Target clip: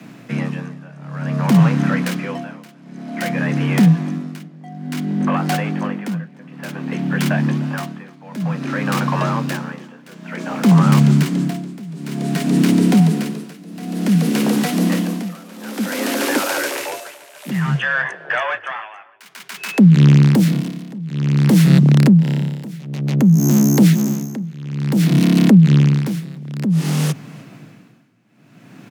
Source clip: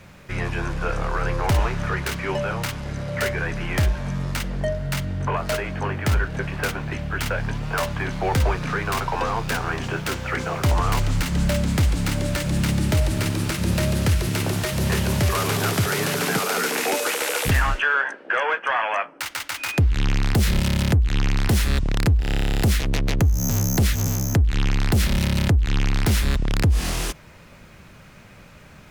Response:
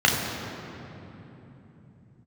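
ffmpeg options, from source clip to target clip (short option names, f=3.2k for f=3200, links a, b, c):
-filter_complex "[0:a]tremolo=f=0.55:d=0.93,acontrast=50,lowshelf=f=170:g=8.5,asplit=2[a][b];[b]adelay=302,lowpass=f=4.3k:p=1,volume=-22dB,asplit=2[c][d];[d]adelay=302,lowpass=f=4.3k:p=1,volume=0.31[e];[c][e]amix=inputs=2:normalize=0[f];[a][f]amix=inputs=2:normalize=0,afreqshift=110,volume=-3dB"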